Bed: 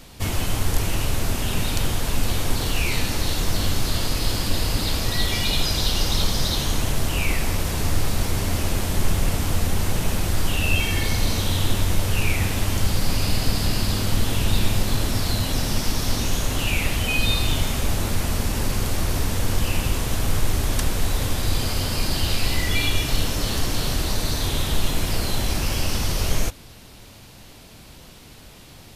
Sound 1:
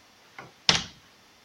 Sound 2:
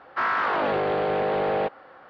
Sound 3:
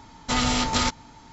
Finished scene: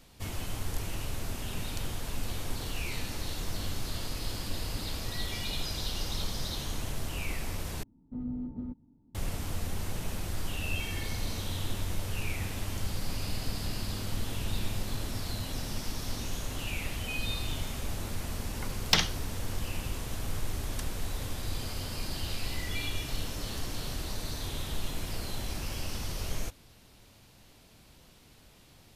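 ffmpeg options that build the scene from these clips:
-filter_complex "[0:a]volume=0.237[s0];[3:a]lowpass=f=260:t=q:w=2.2[s1];[1:a]asoftclip=type=hard:threshold=0.355[s2];[s0]asplit=2[s3][s4];[s3]atrim=end=7.834[s5];[s1]atrim=end=1.32,asetpts=PTS-STARTPTS,volume=0.188[s6];[s4]atrim=start=9.146[s7];[s2]atrim=end=1.44,asetpts=PTS-STARTPTS,volume=0.794,afade=t=in:d=0.004:c=hsin,afade=t=out:st=1.436:d=0.004:c=hsin,adelay=18240[s8];[s5][s6]acrossfade=d=0.004:c1=hsin:c2=hsin[s9];[s9][s7]acrossfade=d=0.004:c1=hsin:c2=hsin[s10];[s10][s8]amix=inputs=2:normalize=0"

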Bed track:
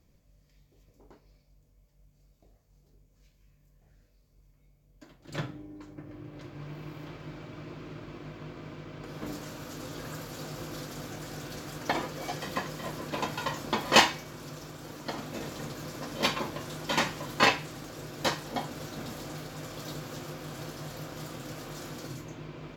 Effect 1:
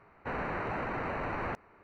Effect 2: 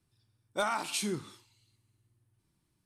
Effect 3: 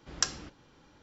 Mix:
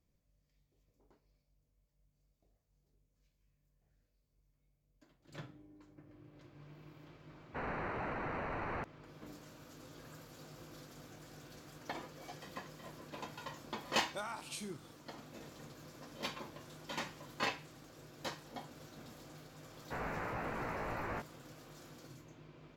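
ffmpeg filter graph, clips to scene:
-filter_complex "[1:a]asplit=2[s0][s1];[0:a]volume=0.2[s2];[s1]flanger=delay=16.5:depth=2.2:speed=3[s3];[s0]atrim=end=1.83,asetpts=PTS-STARTPTS,volume=0.562,afade=t=in:d=0.004:c=hsin,afade=t=out:st=1.826:d=0.004:c=hsin,adelay=7290[s4];[2:a]atrim=end=2.85,asetpts=PTS-STARTPTS,volume=0.266,afade=t=in:d=0.004:c=hsin,afade=t=out:st=2.846:d=0.004:c=hsin,adelay=13580[s5];[s3]atrim=end=1.83,asetpts=PTS-STARTPTS,volume=0.75,afade=t=in:d=0.004:c=hsin,afade=t=out:st=1.826:d=0.004:c=hsin,adelay=19650[s6];[s2][s4][s5][s6]amix=inputs=4:normalize=0"

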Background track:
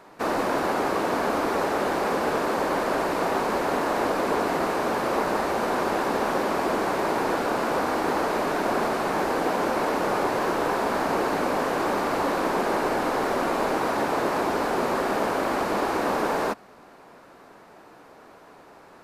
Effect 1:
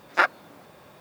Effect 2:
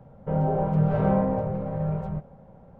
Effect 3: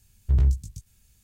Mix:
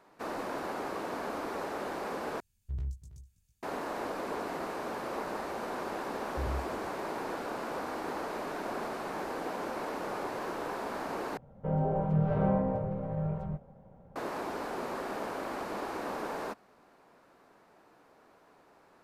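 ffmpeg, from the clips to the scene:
-filter_complex "[3:a]asplit=2[s0][s1];[0:a]volume=0.251[s2];[s0]aecho=1:1:326:0.168[s3];[s2]asplit=3[s4][s5][s6];[s4]atrim=end=2.404[s7];[s3]atrim=end=1.23,asetpts=PTS-STARTPTS,volume=0.158[s8];[s5]atrim=start=3.626:end=11.374[s9];[2:a]atrim=end=2.79,asetpts=PTS-STARTPTS,volume=0.531[s10];[s6]atrim=start=14.156[s11];[s1]atrim=end=1.23,asetpts=PTS-STARTPTS,volume=0.158,afade=t=in:d=0.004:c=hsin,afade=t=out:st=1.226:d=0.004:c=hsin,adelay=6080[s12];[s7][s8]acrossfade=d=0.004:c1=hsin:c2=hsin[s13];[s13][s9]acrossfade=d=0.004:c1=hsin:c2=hsin[s14];[s14][s10]acrossfade=d=0.004:c1=hsin:c2=hsin[s15];[s15][s11]acrossfade=d=0.004:c1=hsin:c2=hsin[s16];[s16][s12]amix=inputs=2:normalize=0"

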